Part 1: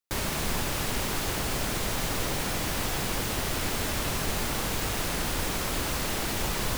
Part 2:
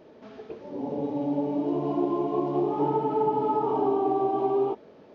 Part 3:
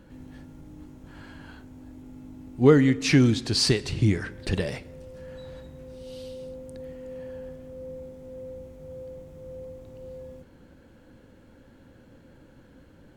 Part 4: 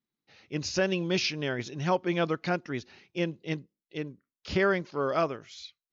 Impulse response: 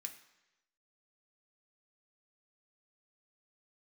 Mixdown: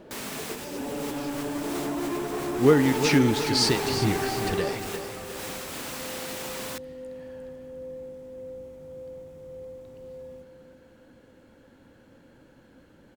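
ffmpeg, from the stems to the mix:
-filter_complex "[0:a]highpass=180,volume=0.501,asplit=2[s0][s1];[s1]volume=0.299[s2];[1:a]asoftclip=type=tanh:threshold=0.0282,volume=1.26,asplit=2[s3][s4];[s4]volume=0.376[s5];[2:a]lowshelf=f=140:g=-9.5,volume=1,asplit=2[s6][s7];[s7]volume=0.316[s8];[3:a]highpass=790,acompressor=threshold=0.0355:ratio=6,volume=0.168,asplit=2[s9][s10];[s10]apad=whole_len=298966[s11];[s0][s11]sidechaincompress=threshold=0.00112:ratio=3:attack=16:release=153[s12];[4:a]atrim=start_sample=2205[s13];[s2][s13]afir=irnorm=-1:irlink=0[s14];[s5][s8]amix=inputs=2:normalize=0,aecho=0:1:354|708|1062|1416|1770|2124:1|0.46|0.212|0.0973|0.0448|0.0206[s15];[s12][s3][s6][s9][s14][s15]amix=inputs=6:normalize=0"

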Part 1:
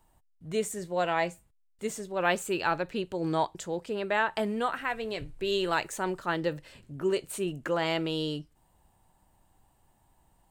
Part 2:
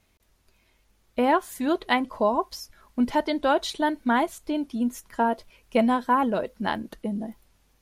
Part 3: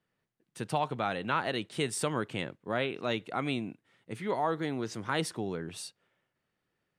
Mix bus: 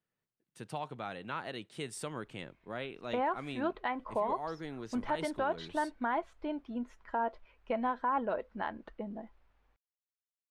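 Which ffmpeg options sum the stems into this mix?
-filter_complex "[1:a]lowpass=1700,equalizer=f=160:w=0.41:g=-12.5,adelay=1950,volume=0.841[s0];[2:a]volume=0.355[s1];[s0][s1]amix=inputs=2:normalize=0,alimiter=limit=0.0708:level=0:latency=1:release=110"

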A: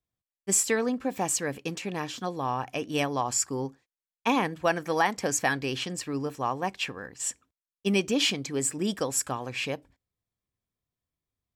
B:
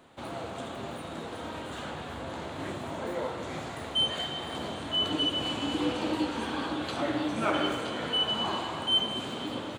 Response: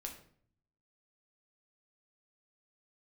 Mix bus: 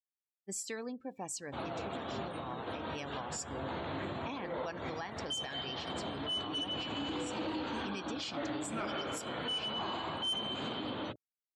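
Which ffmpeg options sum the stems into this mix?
-filter_complex "[0:a]adynamicequalizer=threshold=0.00501:dfrequency=4400:dqfactor=1.5:tfrequency=4400:tqfactor=1.5:attack=5:release=100:ratio=0.375:range=4:mode=boostabove:tftype=bell,volume=0.2,asplit=3[s0][s1][s2];[s1]volume=0.112[s3];[1:a]lowpass=8000,bandreject=f=60:t=h:w=6,bandreject=f=120:t=h:w=6,bandreject=f=180:t=h:w=6,bandreject=f=240:t=h:w=6,bandreject=f=300:t=h:w=6,bandreject=f=360:t=h:w=6,bandreject=f=420:t=h:w=6,bandreject=f=480:t=h:w=6,bandreject=f=540:t=h:w=6,bandreject=f=600:t=h:w=6,asoftclip=type=tanh:threshold=0.075,adelay=1350,volume=1.33[s4];[s2]apad=whole_len=490897[s5];[s4][s5]sidechaincompress=threshold=0.00501:ratio=3:attack=37:release=242[s6];[2:a]atrim=start_sample=2205[s7];[s3][s7]afir=irnorm=-1:irlink=0[s8];[s0][s6][s8]amix=inputs=3:normalize=0,afftdn=nr=23:nf=-51,alimiter=level_in=2:limit=0.0631:level=0:latency=1:release=139,volume=0.501"

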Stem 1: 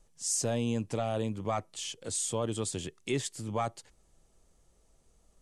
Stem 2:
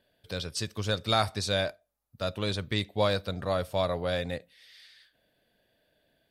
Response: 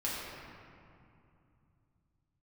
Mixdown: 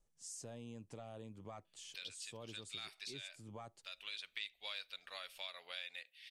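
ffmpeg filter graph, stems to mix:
-filter_complex "[0:a]volume=0.188,asplit=2[s0][s1];[1:a]bandpass=f=2600:t=q:w=2.8:csg=0,aemphasis=mode=production:type=riaa,adelay=1650,volume=1.41[s2];[s1]apad=whole_len=350766[s3];[s2][s3]sidechaincompress=threshold=0.002:ratio=8:attack=30:release=685[s4];[s0][s4]amix=inputs=2:normalize=0,acompressor=threshold=0.00398:ratio=2.5"

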